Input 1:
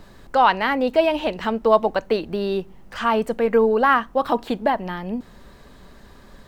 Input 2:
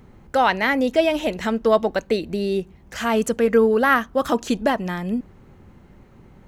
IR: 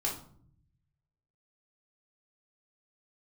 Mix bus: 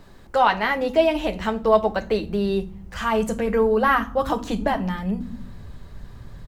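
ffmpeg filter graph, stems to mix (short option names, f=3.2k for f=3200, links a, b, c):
-filter_complex "[0:a]volume=-3dB[a];[1:a]asubboost=boost=8.5:cutoff=150,adelay=9,volume=-11.5dB,asplit=2[b][c];[c]volume=-4.5dB[d];[2:a]atrim=start_sample=2205[e];[d][e]afir=irnorm=-1:irlink=0[f];[a][b][f]amix=inputs=3:normalize=0"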